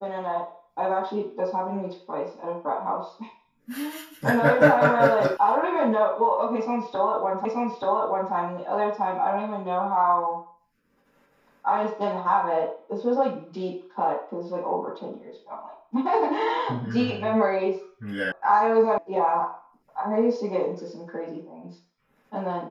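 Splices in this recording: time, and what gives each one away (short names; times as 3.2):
5.37 sound cut off
7.45 repeat of the last 0.88 s
18.32 sound cut off
18.98 sound cut off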